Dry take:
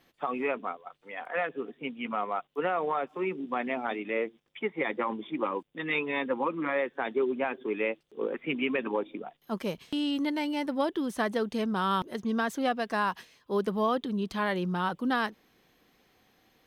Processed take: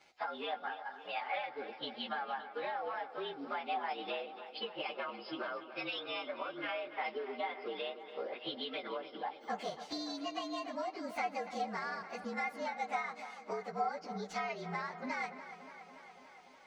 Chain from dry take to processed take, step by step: frequency axis rescaled in octaves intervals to 114%; three-band isolator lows -14 dB, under 470 Hz, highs -16 dB, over 7.4 kHz; compression 12:1, threshold -44 dBFS, peak gain reduction 18.5 dB; small resonant body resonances 750/2100 Hz, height 12 dB, ringing for 45 ms; tape echo 287 ms, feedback 76%, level -12 dB, low-pass 4.3 kHz; on a send at -23.5 dB: reverberation RT60 0.45 s, pre-delay 107 ms; on the sum: trim +6 dB

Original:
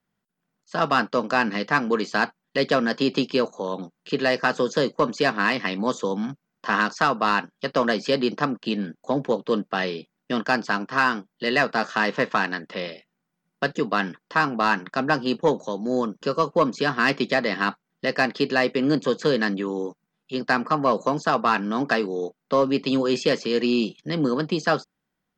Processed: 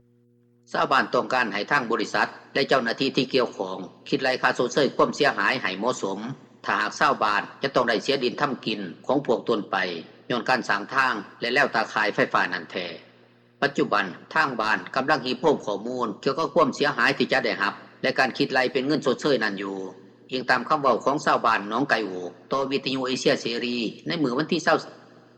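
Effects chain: mains buzz 120 Hz, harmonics 4, -55 dBFS; in parallel at -3 dB: peak limiter -18 dBFS, peak gain reduction 10.5 dB; on the sum: two-slope reverb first 0.58 s, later 2.8 s, from -18 dB, DRR 9.5 dB; harmonic-percussive split harmonic -12 dB

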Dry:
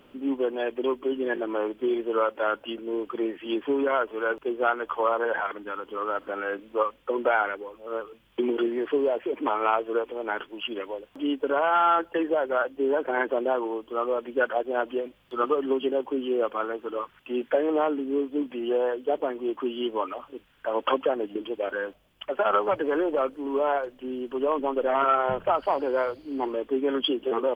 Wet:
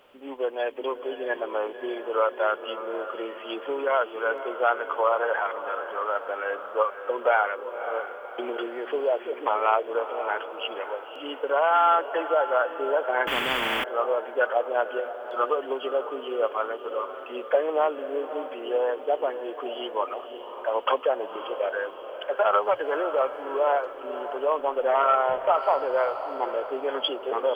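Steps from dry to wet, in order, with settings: resonant low shelf 390 Hz -11.5 dB, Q 1.5; echo that smears into a reverb 558 ms, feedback 53%, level -10.5 dB; 13.27–13.84 s: spectrum-flattening compressor 10:1

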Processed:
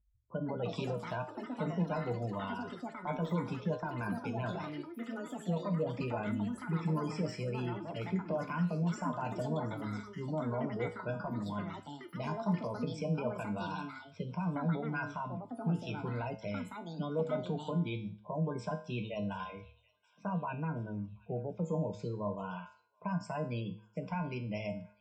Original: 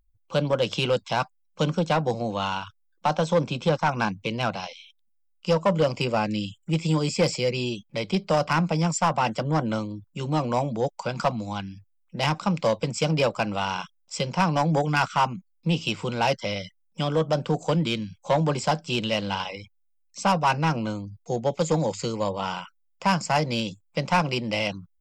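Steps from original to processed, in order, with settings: level-controlled noise filter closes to 990 Hz, open at -22 dBFS; spectral gate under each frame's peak -20 dB strong; rippled EQ curve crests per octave 1.6, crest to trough 12 dB; peak limiter -16.5 dBFS, peak gain reduction 10 dB; high-pass 45 Hz; feedback comb 69 Hz, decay 0.45 s, harmonics odd, mix 80%; feedback echo behind a high-pass 726 ms, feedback 53%, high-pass 2.1 kHz, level -20 dB; ever faster or slower copies 240 ms, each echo +6 st, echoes 3, each echo -6 dB; tilt EQ -2.5 dB/octave; de-hum 109.6 Hz, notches 17; trim -3 dB

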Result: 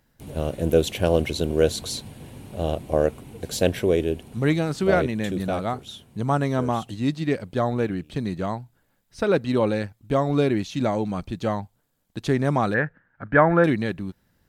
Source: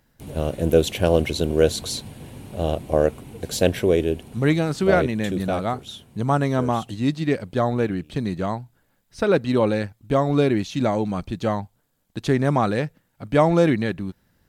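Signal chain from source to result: 12.74–13.64 s: resonant low-pass 1.6 kHz, resonance Q 6.4; trim -2 dB

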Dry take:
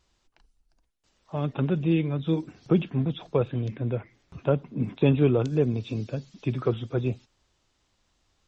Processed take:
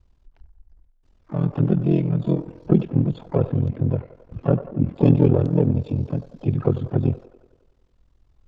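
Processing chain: tilt EQ -3.5 dB/octave; feedback echo behind a band-pass 92 ms, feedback 61%, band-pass 890 Hz, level -11 dB; harmony voices +4 st -10 dB, +12 st -18 dB; ring modulator 21 Hz

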